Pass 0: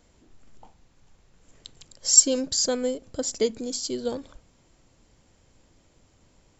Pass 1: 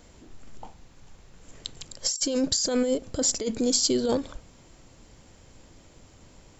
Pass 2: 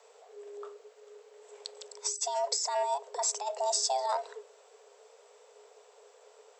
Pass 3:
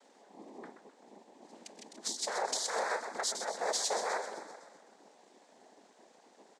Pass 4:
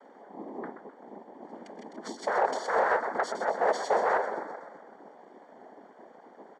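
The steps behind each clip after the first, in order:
negative-ratio compressor -29 dBFS, ratio -1; gain +3.5 dB
frequency shift +410 Hz; gain -6 dB
feedback echo 0.128 s, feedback 58%, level -9.5 dB; noise vocoder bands 6; gain -3.5 dB
polynomial smoothing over 41 samples; in parallel at -9 dB: soft clip -33 dBFS, distortion -11 dB; on the sum: gain +7.5 dB

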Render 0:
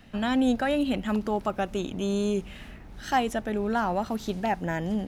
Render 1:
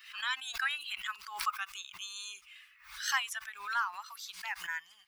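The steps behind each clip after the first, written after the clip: per-bin expansion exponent 1.5; elliptic high-pass 1100 Hz, stop band 50 dB; backwards sustainer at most 98 dB/s; gain +3 dB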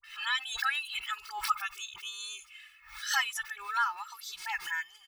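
comb 2.3 ms, depth 97%; dispersion highs, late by 43 ms, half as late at 1200 Hz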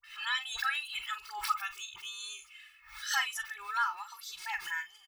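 doubler 41 ms -11 dB; gain -2 dB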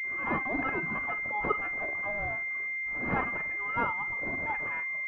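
pulse-width modulation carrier 2100 Hz; gain +8.5 dB

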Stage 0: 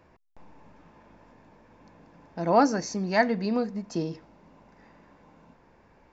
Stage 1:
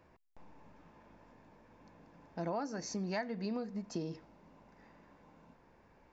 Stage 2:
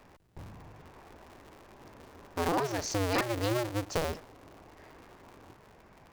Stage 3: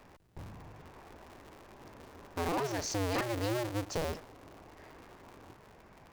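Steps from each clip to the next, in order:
compressor 12:1, threshold -28 dBFS, peak gain reduction 14.5 dB; gain -5.5 dB
cycle switcher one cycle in 2, inverted; gain +7.5 dB
soft clip -27.5 dBFS, distortion -13 dB

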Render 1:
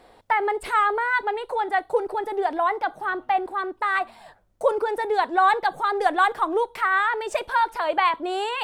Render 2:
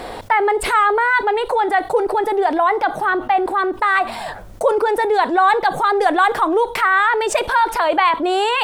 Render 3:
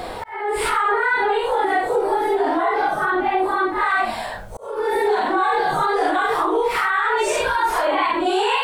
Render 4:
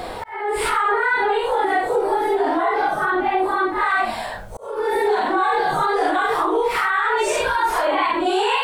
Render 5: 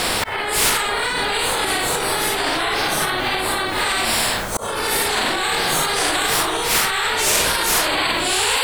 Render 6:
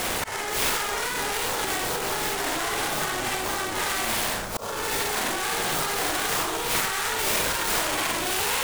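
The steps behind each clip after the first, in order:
fast leveller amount 50%; gain +3.5 dB
phase scrambler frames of 0.2 s; limiter -11 dBFS, peak gain reduction 8 dB; auto swell 0.394 s
nothing audible
spectral compressor 4:1; gain +6.5 dB
noise-modulated delay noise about 5400 Hz, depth 0.051 ms; gain -6.5 dB

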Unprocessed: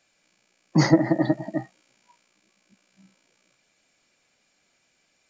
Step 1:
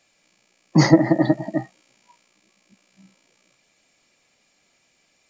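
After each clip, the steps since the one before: notch 1500 Hz, Q 8.4; gain +4 dB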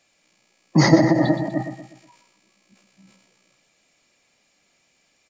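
on a send: feedback echo 0.122 s, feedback 41%, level -10.5 dB; on the sum: transient shaper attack 0 dB, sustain +6 dB; gain -1 dB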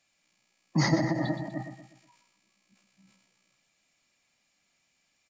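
bell 440 Hz -7.5 dB 1.1 oct; gain -8 dB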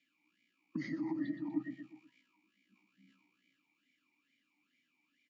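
compressor 6:1, threshold -35 dBFS, peak gain reduction 15 dB; vowel sweep i-u 2.3 Hz; gain +9 dB

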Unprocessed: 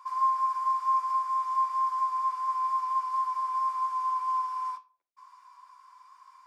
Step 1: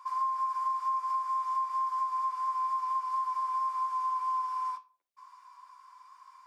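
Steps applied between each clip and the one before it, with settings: compressor, threshold -28 dBFS, peak gain reduction 7 dB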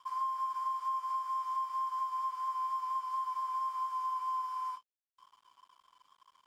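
crossover distortion -55 dBFS; gain -3.5 dB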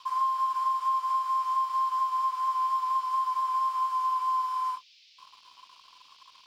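band noise 2400–5300 Hz -66 dBFS; gain +7.5 dB

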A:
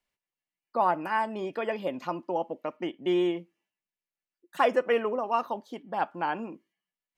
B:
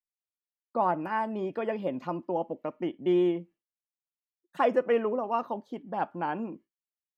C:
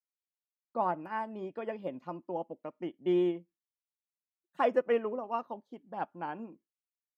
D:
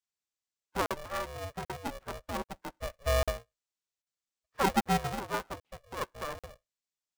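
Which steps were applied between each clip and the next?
expander -49 dBFS; tilt -2.5 dB/oct; gain -2.5 dB
upward expander 1.5:1, over -46 dBFS; gain -2 dB
nonlinear frequency compression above 1200 Hz 1.5:1; crackling interface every 0.79 s, samples 2048, zero, from 0.86; polarity switched at an audio rate 290 Hz

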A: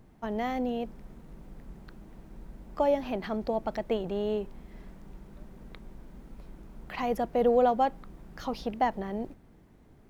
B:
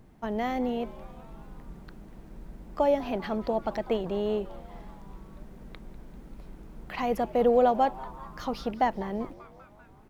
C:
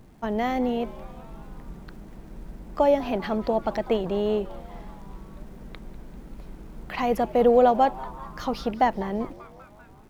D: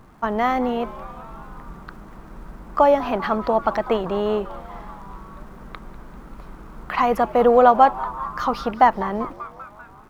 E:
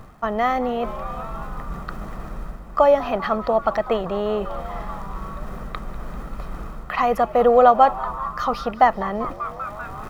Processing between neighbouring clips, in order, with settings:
frequency-shifting echo 0.196 s, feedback 63%, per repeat +140 Hz, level -20 dB; gain +1.5 dB
crackle 230/s -57 dBFS; gain +4 dB
bell 1200 Hz +13.5 dB 1 oct; gain +1 dB
comb 1.6 ms, depth 37%; reverse; upward compressor, threshold -20 dBFS; reverse; gain -1 dB

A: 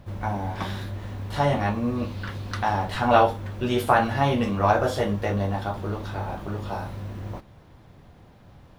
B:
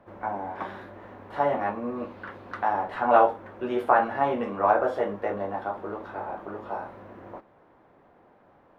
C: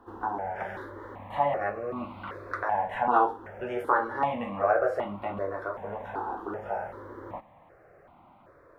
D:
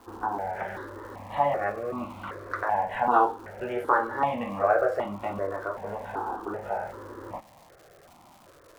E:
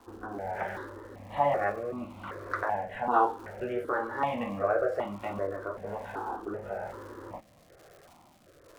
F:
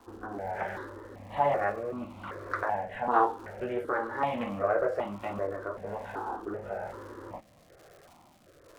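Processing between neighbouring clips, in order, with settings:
three-band isolator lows -22 dB, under 270 Hz, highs -22 dB, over 2000 Hz
in parallel at +1.5 dB: compressor, threshold -33 dBFS, peak gain reduction 18.5 dB; on the sum: step phaser 2.6 Hz 600–1700 Hz; gain -1.5 dB
crackle 360/s -46 dBFS; gain +1.5 dB
rotary speaker horn 1.1 Hz
Doppler distortion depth 0.15 ms

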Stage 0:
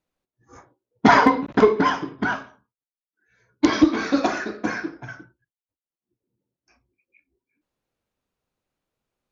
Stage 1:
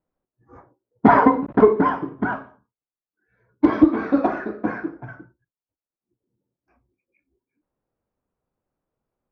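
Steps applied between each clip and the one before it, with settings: LPF 1200 Hz 12 dB/oct; gain +2 dB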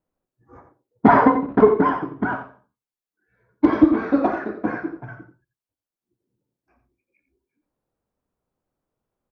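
echo 87 ms -10 dB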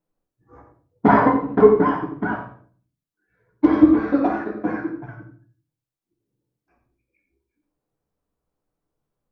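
reverb RT60 0.45 s, pre-delay 6 ms, DRR 3.5 dB; gain -2.5 dB

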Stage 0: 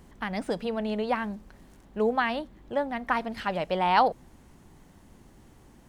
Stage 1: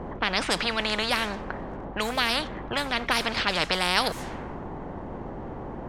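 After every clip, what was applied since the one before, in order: low-pass opened by the level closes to 840 Hz, open at -23 dBFS; spectral compressor 4:1; gain +3 dB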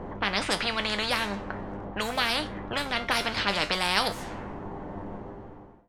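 ending faded out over 0.84 s; resonator 100 Hz, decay 0.25 s, harmonics all, mix 70%; gain +4.5 dB

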